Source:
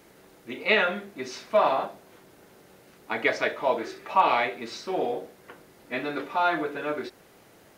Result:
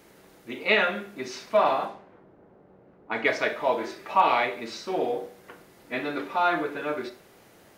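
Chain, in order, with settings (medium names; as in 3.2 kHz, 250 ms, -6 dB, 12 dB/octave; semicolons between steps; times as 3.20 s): Schroeder reverb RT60 0.45 s, combs from 31 ms, DRR 11 dB; 1.64–3.25 s: level-controlled noise filter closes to 820 Hz, open at -23 dBFS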